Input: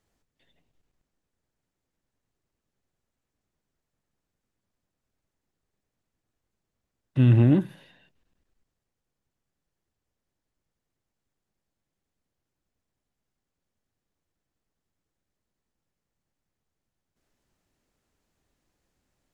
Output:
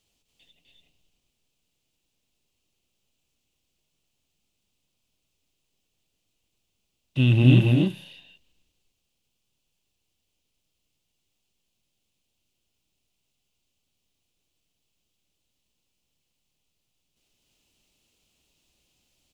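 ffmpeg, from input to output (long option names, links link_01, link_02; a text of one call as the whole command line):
ffmpeg -i in.wav -af "highshelf=frequency=2200:width_type=q:width=3:gain=8,aecho=1:1:253.6|285.7:0.631|0.794,volume=-1.5dB" out.wav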